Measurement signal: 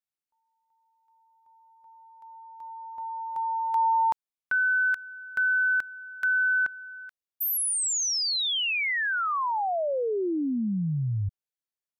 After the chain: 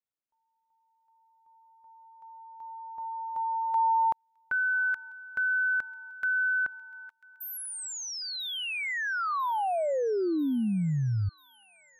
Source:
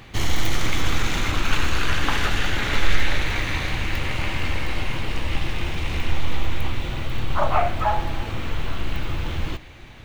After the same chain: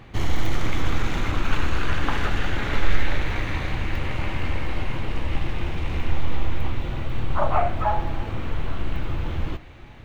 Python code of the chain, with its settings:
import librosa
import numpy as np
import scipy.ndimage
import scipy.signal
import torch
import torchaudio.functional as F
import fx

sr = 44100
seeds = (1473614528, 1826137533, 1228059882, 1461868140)

p1 = fx.high_shelf(x, sr, hz=2400.0, db=-11.5)
y = p1 + fx.echo_wet_highpass(p1, sr, ms=993, feedback_pct=70, hz=2100.0, wet_db=-20, dry=0)